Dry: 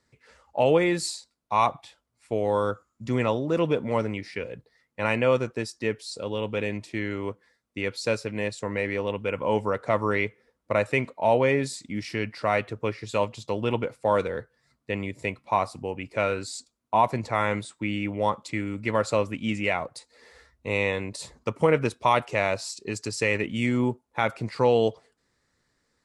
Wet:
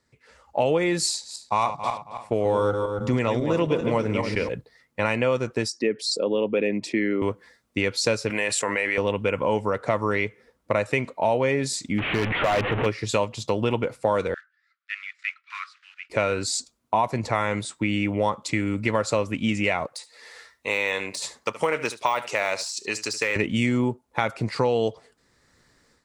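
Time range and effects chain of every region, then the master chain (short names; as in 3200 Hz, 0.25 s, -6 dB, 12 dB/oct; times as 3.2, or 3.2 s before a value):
1.09–4.49 regenerating reverse delay 0.136 s, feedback 51%, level -7.5 dB + mismatched tape noise reduction decoder only
5.68–7.22 formant sharpening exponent 1.5 + HPF 170 Hz 24 dB/oct
8.3–8.98 HPF 1200 Hz 6 dB/oct + band shelf 4900 Hz -8 dB 1.1 oct + fast leveller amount 70%
11.98–12.86 delta modulation 16 kbps, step -28 dBFS + hard clip -24 dBFS
14.34–16.1 block floating point 5-bit + steep high-pass 1300 Hz 72 dB/oct + tape spacing loss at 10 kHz 36 dB
19.86–23.36 de-esser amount 95% + HPF 1300 Hz 6 dB/oct + echo 73 ms -16 dB
whole clip: AGC gain up to 11.5 dB; dynamic EQ 6100 Hz, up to +4 dB, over -40 dBFS, Q 1.7; compressor 3:1, threshold -21 dBFS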